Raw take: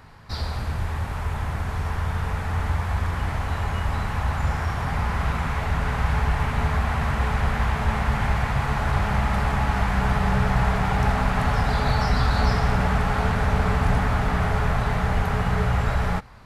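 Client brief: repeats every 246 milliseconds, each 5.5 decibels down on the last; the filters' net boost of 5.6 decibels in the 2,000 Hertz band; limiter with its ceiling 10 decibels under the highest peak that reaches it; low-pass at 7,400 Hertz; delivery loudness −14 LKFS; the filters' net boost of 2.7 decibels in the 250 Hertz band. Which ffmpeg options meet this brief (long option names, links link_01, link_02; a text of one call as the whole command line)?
ffmpeg -i in.wav -af "lowpass=7400,equalizer=frequency=250:width_type=o:gain=4,equalizer=frequency=2000:width_type=o:gain=7,alimiter=limit=-17dB:level=0:latency=1,aecho=1:1:246|492|738|984|1230|1476|1722:0.531|0.281|0.149|0.079|0.0419|0.0222|0.0118,volume=11dB" out.wav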